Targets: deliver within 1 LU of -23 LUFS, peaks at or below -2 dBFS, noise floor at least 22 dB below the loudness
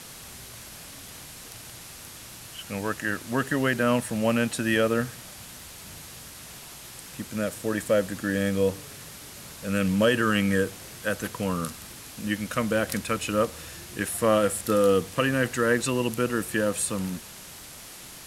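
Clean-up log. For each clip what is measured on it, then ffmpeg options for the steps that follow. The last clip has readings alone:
noise floor -44 dBFS; noise floor target -48 dBFS; loudness -26.0 LUFS; peak -9.0 dBFS; loudness target -23.0 LUFS
-> -af "afftdn=nr=6:nf=-44"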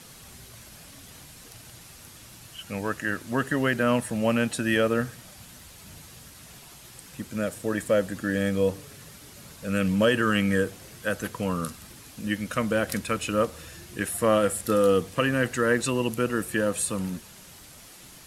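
noise floor -48 dBFS; loudness -26.0 LUFS; peak -9.0 dBFS; loudness target -23.0 LUFS
-> -af "volume=3dB"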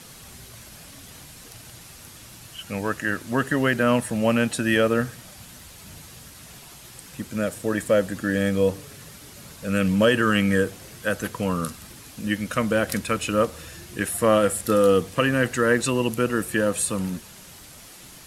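loudness -23.0 LUFS; peak -6.0 dBFS; noise floor -45 dBFS

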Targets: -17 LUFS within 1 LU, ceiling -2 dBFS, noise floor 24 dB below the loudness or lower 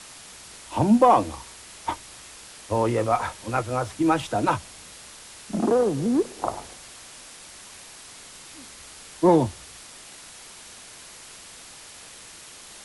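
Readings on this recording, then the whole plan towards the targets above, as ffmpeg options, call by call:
noise floor -45 dBFS; noise floor target -48 dBFS; loudness -23.5 LUFS; peak -5.5 dBFS; loudness target -17.0 LUFS
-> -af "afftdn=nr=6:nf=-45"
-af "volume=6.5dB,alimiter=limit=-2dB:level=0:latency=1"

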